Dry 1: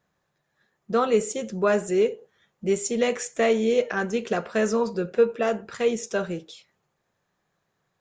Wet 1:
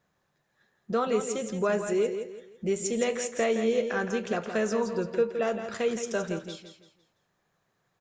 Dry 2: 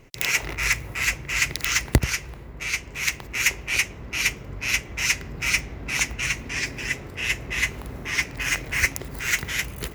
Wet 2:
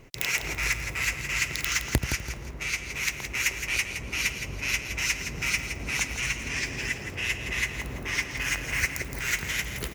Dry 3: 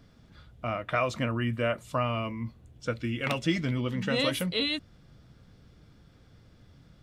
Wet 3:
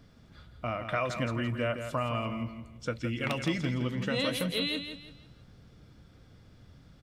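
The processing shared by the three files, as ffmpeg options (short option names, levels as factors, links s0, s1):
-af "acompressor=threshold=0.0251:ratio=1.5,aecho=1:1:167|334|501|668:0.376|0.124|0.0409|0.0135"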